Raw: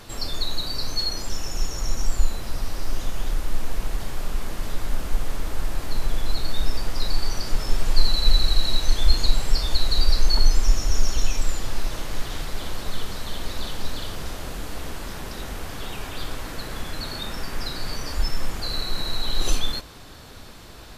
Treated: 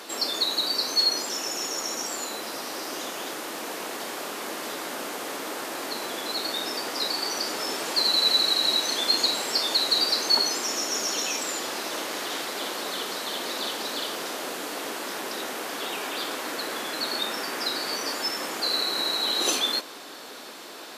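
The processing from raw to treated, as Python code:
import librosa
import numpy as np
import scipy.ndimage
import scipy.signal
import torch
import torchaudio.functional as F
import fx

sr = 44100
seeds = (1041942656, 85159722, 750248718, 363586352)

y = scipy.signal.sosfilt(scipy.signal.butter(4, 280.0, 'highpass', fs=sr, output='sos'), x)
y = y * librosa.db_to_amplitude(5.0)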